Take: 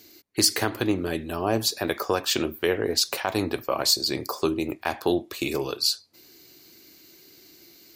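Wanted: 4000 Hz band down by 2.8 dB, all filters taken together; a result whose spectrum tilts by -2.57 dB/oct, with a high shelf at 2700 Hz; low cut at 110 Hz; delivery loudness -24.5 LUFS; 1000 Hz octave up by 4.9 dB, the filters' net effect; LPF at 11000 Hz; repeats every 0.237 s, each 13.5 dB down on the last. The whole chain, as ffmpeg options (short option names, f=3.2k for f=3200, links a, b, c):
-af "highpass=110,lowpass=11k,equalizer=f=1k:t=o:g=6,highshelf=f=2.7k:g=6,equalizer=f=4k:t=o:g=-9,aecho=1:1:237|474:0.211|0.0444"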